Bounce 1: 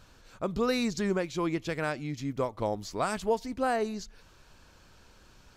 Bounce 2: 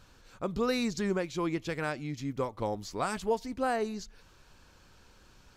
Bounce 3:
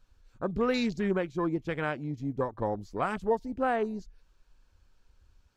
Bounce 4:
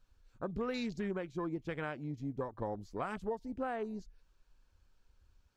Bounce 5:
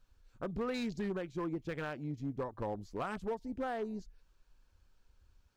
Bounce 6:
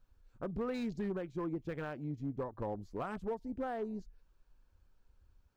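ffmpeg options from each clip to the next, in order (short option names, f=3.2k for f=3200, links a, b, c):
-af "bandreject=f=640:w=15,volume=-1.5dB"
-af "afwtdn=0.00891,volume=2dB"
-af "acompressor=threshold=-28dB:ratio=6,volume=-5dB"
-af "asoftclip=type=hard:threshold=-31.5dB,volume=1dB"
-af "equalizer=f=5.6k:w=0.3:g=-7.5"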